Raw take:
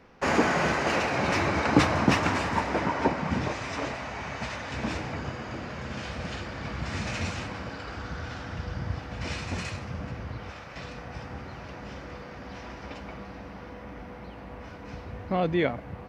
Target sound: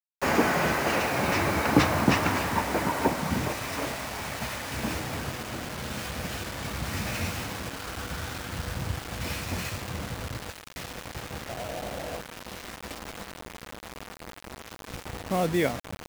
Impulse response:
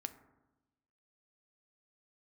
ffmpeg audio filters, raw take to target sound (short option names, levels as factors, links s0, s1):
-filter_complex "[0:a]asettb=1/sr,asplit=3[s0][s1][s2];[s0]atrim=end=11.494[s3];[s1]atrim=start=11.49:end=12.21,asetpts=PTS-STARTPTS,afade=t=in:d=0.004:c=qsin,afade=t=out:st=0.716:d=0.004:c=qsin,lowpass=f=670:t=q:w=4.9[s4];[s2]atrim=start=12.206[s5];[s3][s4]acrossfade=d=0.004:c1=hsin:c2=qsin[s6];[s6][s5]acrossfade=d=0.004:c1=qsin:c2=hsin,acrusher=bits=5:mix=0:aa=0.000001"